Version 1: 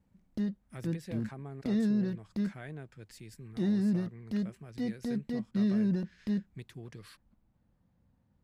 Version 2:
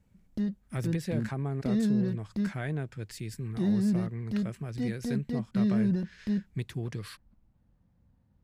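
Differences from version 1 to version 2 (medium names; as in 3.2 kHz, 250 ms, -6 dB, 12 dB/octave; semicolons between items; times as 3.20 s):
speech +8.5 dB; master: add bass shelf 120 Hz +7.5 dB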